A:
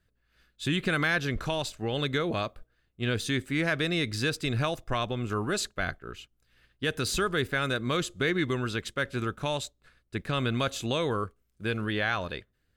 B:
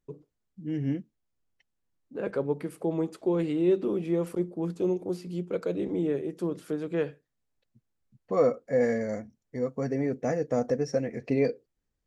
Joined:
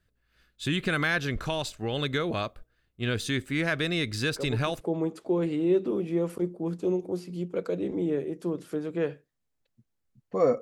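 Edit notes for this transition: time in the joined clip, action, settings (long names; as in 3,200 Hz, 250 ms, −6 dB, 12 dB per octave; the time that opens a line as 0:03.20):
A
0:04.36: mix in B from 0:02.33 0.45 s −7 dB
0:04.81: continue with B from 0:02.78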